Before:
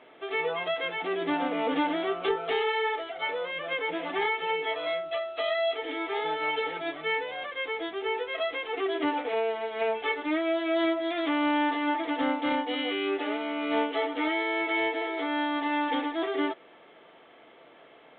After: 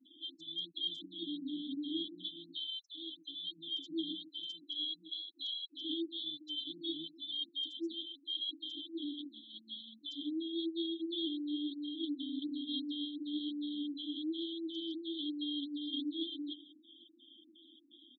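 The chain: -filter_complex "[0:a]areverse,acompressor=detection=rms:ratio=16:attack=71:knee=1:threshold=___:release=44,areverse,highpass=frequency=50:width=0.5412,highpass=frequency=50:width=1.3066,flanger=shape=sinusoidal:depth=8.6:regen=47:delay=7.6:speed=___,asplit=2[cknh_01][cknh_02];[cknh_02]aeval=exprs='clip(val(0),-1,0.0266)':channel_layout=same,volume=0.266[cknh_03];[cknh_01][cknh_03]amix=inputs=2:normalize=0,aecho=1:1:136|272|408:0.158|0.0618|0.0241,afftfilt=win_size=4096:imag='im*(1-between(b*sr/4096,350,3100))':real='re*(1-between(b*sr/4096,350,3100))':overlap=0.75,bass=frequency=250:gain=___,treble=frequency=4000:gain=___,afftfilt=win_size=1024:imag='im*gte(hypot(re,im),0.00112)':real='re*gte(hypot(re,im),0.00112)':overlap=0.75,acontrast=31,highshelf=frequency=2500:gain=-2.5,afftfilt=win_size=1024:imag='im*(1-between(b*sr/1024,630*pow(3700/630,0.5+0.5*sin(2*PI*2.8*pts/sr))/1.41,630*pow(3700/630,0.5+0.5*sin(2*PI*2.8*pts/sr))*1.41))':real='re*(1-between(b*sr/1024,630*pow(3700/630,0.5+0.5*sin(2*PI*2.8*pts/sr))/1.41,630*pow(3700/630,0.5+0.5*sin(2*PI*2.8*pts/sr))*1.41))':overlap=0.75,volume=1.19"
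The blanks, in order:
0.0158, 1.1, -15, 14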